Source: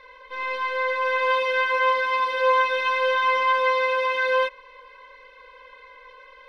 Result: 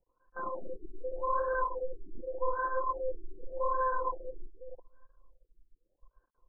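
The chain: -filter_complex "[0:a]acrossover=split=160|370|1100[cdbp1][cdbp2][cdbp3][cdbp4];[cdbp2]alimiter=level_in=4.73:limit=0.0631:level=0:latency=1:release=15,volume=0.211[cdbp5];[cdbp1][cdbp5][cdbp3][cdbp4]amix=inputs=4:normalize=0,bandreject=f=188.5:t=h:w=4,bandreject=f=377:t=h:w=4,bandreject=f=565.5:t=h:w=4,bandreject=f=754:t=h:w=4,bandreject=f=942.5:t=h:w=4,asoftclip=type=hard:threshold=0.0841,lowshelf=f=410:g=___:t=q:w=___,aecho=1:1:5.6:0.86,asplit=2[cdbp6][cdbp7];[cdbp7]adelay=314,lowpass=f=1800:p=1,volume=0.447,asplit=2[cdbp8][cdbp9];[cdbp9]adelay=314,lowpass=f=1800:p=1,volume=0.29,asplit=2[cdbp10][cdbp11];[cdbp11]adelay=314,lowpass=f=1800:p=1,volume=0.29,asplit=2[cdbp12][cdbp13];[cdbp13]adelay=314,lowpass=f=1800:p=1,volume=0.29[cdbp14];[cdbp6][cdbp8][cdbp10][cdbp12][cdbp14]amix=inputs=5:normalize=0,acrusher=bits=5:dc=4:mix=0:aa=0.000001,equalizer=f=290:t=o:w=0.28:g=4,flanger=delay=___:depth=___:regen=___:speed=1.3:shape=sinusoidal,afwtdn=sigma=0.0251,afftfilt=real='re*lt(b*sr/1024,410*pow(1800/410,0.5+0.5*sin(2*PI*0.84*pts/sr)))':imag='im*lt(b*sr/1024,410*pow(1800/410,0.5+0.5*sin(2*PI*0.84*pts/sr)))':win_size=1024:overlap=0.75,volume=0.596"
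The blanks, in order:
9.5, 3, 1.7, 9.2, -20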